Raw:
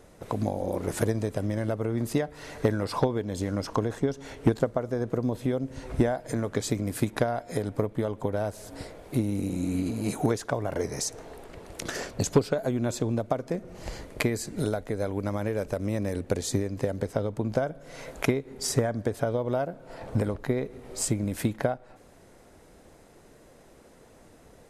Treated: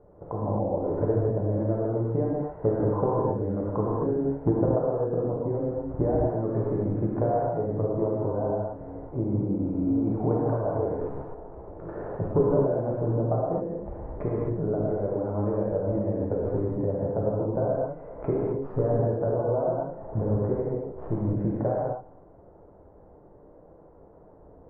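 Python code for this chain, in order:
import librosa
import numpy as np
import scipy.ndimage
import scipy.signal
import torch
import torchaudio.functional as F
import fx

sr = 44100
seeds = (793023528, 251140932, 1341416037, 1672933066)

y = fx.tracing_dist(x, sr, depth_ms=0.17)
y = scipy.signal.sosfilt(scipy.signal.butter(4, 1000.0, 'lowpass', fs=sr, output='sos'), y)
y = fx.peak_eq(y, sr, hz=240.0, db=-11.5, octaves=0.24)
y = fx.rev_gated(y, sr, seeds[0], gate_ms=290, shape='flat', drr_db=-5.5)
y = F.gain(torch.from_numpy(y), -3.0).numpy()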